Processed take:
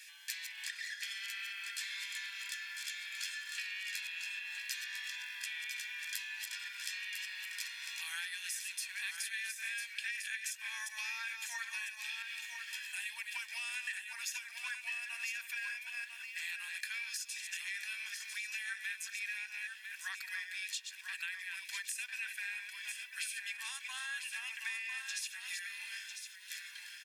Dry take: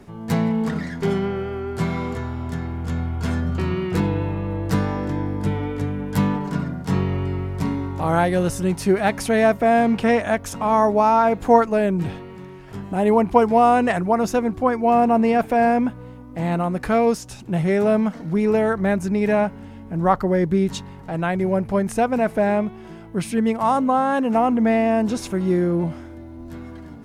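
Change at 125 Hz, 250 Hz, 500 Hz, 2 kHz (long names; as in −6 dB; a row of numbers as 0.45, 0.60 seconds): below −40 dB, below −40 dB, below −40 dB, −7.0 dB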